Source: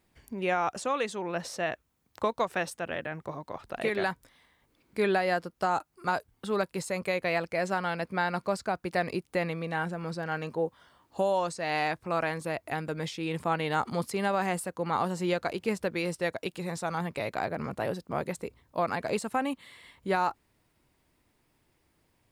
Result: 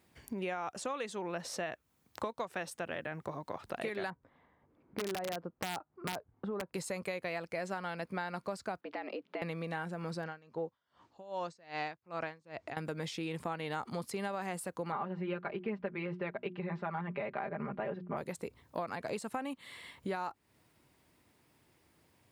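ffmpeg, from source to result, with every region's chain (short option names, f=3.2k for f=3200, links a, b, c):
-filter_complex "[0:a]asettb=1/sr,asplit=3[a][b][c];[a]atrim=end=4.104[d];[b]atrim=start=4.1:end=6.74,asetpts=PTS-STARTPTS,afade=t=in:d=0.004:c=qsin,afade=t=out:st=2.636:d=0.004:c=qsin,lowpass=1.1k,acompressor=threshold=-30dB:ratio=2.5:attack=3.2:release=140:knee=1:detection=peak,aeval=exprs='(mod(17.8*val(0)+1,2)-1)/17.8':c=same[e];[c]atrim=start=6.736[f];[d][e]acrossfade=d=0.004:c1=hsin:c2=qsin[g];[g][f]acrossfade=d=0.004:c1=qsin:c2=hsin,asettb=1/sr,asplit=3[h][i][j];[h]atrim=end=8.814[k];[i]atrim=start=8.81:end=9.42,asetpts=PTS-STARTPTS,afade=t=in:d=0.004:c=qsin,afade=t=out:st=0.606:d=0.004:c=qsin,lowpass=f=3.6k:w=0.5412,lowpass=f=3.6k:w=1.3066,acompressor=threshold=-39dB:ratio=2.5:attack=3.2:release=140:knee=1:detection=peak,afreqshift=120[l];[j]atrim=start=9.416[m];[k][l]acrossfade=d=0.004:c1=hsin:c2=qsin[n];[n][m]acrossfade=d=0.004:c1=qsin:c2=hsin,asettb=1/sr,asplit=3[o][p][q];[o]atrim=end=10.244[r];[p]atrim=start=10.24:end=12.77,asetpts=PTS-STARTPTS,afade=t=in:d=0.004:c=qsin,afade=t=out:st=2.526:d=0.004:c=qsin,lowpass=f=6.8k:w=0.5412,lowpass=f=6.8k:w=1.3066,aeval=exprs='val(0)*pow(10,-28*(0.5-0.5*cos(2*PI*2.5*n/s))/20)':c=same[s];[q]atrim=start=12.766[t];[r][s]acrossfade=d=0.004:c1=hsin:c2=qsin[u];[u][t]acrossfade=d=0.004:c1=qsin:c2=hsin,asettb=1/sr,asplit=3[v][w][x];[v]atrim=end=14.924[y];[w]atrim=start=14.92:end=18.17,asetpts=PTS-STARTPTS,afade=t=in:d=0.004:c=qsin,afade=t=out:st=3.246:d=0.004:c=qsin,lowpass=f=2.6k:w=0.5412,lowpass=f=2.6k:w=1.3066,bandreject=f=60:t=h:w=6,bandreject=f=120:t=h:w=6,bandreject=f=180:t=h:w=6,bandreject=f=240:t=h:w=6,bandreject=f=300:t=h:w=6,bandreject=f=360:t=h:w=6,aecho=1:1:5:0.81,atrim=end_sample=143325[z];[x]atrim=start=18.166[aa];[y][z]acrossfade=d=0.004:c1=hsin:c2=qsin[ab];[ab][aa]acrossfade=d=0.004:c1=qsin:c2=hsin,highpass=76,acompressor=threshold=-39dB:ratio=4,volume=2.5dB"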